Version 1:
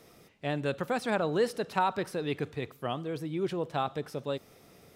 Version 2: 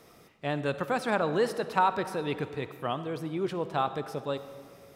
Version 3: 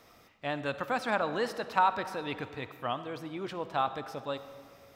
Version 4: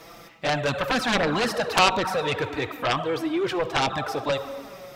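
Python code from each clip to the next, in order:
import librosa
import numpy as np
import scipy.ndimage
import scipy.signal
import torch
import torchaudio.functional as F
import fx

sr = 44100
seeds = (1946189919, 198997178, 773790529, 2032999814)

y1 = fx.peak_eq(x, sr, hz=1100.0, db=4.5, octaves=1.1)
y1 = fx.rev_freeverb(y1, sr, rt60_s=2.0, hf_ratio=0.55, predelay_ms=25, drr_db=12.0)
y2 = fx.graphic_eq_15(y1, sr, hz=(160, 400, 10000), db=(-9, -8, -8))
y3 = fx.env_flanger(y2, sr, rest_ms=6.4, full_db=-24.0)
y3 = fx.cheby_harmonics(y3, sr, harmonics=(7,), levels_db=(-6,), full_scale_db=-16.5)
y3 = F.gain(torch.from_numpy(y3), 8.0).numpy()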